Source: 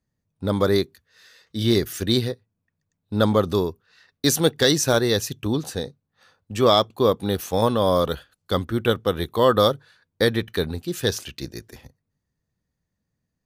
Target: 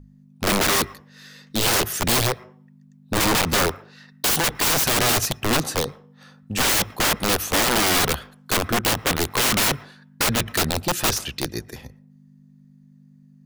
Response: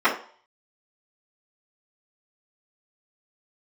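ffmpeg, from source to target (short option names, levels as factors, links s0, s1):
-filter_complex "[0:a]aeval=exprs='val(0)+0.00398*(sin(2*PI*50*n/s)+sin(2*PI*2*50*n/s)/2+sin(2*PI*3*50*n/s)/3+sin(2*PI*4*50*n/s)/4+sin(2*PI*5*50*n/s)/5)':c=same,aeval=exprs='(mod(10.6*val(0)+1,2)-1)/10.6':c=same,bandreject=f=50:t=h:w=6,bandreject=f=100:t=h:w=6,asplit=2[s0][s1];[1:a]atrim=start_sample=2205,adelay=107[s2];[s1][s2]afir=irnorm=-1:irlink=0,volume=0.00944[s3];[s0][s3]amix=inputs=2:normalize=0,volume=2"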